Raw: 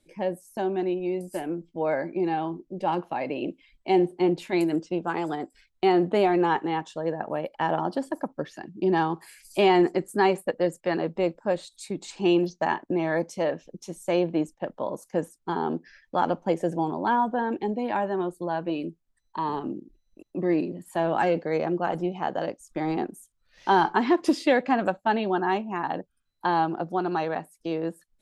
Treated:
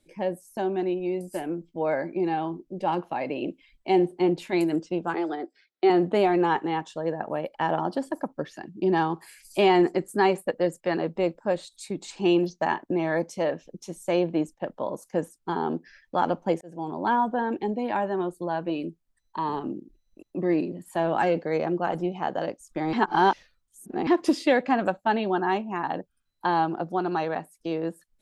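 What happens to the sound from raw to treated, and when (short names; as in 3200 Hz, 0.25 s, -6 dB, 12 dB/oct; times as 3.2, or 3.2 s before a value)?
5.14–5.9 speaker cabinet 340–4900 Hz, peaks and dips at 350 Hz +7 dB, 1000 Hz -8 dB, 2800 Hz -6 dB
16.61–17.06 fade in
22.93–24.07 reverse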